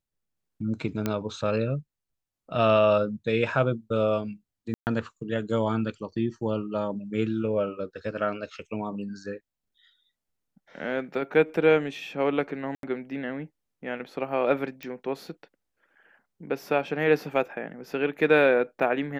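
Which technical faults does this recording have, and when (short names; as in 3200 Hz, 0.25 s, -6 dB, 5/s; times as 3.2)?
1.06 pop -13 dBFS
4.74–4.87 gap 0.129 s
12.75–12.83 gap 82 ms
14.83 pop -22 dBFS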